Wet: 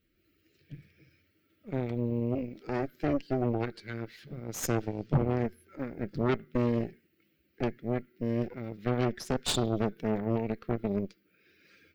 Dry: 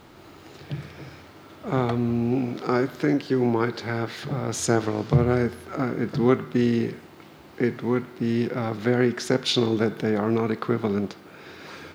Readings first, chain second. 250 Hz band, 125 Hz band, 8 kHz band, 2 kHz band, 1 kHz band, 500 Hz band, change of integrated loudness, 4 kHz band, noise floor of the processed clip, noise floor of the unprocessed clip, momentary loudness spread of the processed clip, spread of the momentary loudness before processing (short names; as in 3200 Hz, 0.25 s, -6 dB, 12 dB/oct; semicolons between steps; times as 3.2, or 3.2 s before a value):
-8.0 dB, -6.0 dB, -6.0 dB, -10.5 dB, -8.0 dB, -8.0 dB, -8.0 dB, -8.5 dB, -72 dBFS, -48 dBFS, 11 LU, 14 LU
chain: per-bin expansion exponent 1.5; Butterworth band-stop 890 Hz, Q 0.77; added harmonics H 8 -13 dB, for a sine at -8.5 dBFS; gain -6.5 dB